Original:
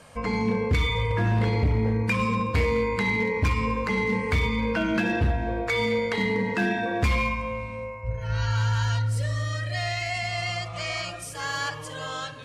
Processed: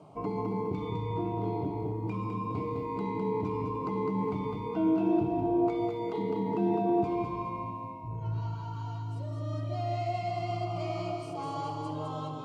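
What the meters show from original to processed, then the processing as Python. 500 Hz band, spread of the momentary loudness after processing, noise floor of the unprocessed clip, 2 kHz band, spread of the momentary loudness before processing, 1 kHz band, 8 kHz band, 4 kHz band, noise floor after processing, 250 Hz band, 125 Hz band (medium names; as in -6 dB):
-3.5 dB, 9 LU, -38 dBFS, -23.0 dB, 8 LU, -3.0 dB, under -20 dB, under -15 dB, -39 dBFS, -2.5 dB, -9.0 dB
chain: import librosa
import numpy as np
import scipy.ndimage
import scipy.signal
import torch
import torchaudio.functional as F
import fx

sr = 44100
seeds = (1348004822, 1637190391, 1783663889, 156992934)

p1 = fx.over_compress(x, sr, threshold_db=-29.0, ratio=-0.5)
p2 = x + F.gain(torch.from_numpy(p1), 1.0).numpy()
p3 = fx.bandpass_q(p2, sr, hz=320.0, q=1.2)
p4 = fx.quant_float(p3, sr, bits=8)
p5 = fx.fixed_phaser(p4, sr, hz=340.0, stages=8)
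y = fx.echo_feedback(p5, sr, ms=207, feedback_pct=41, wet_db=-4.0)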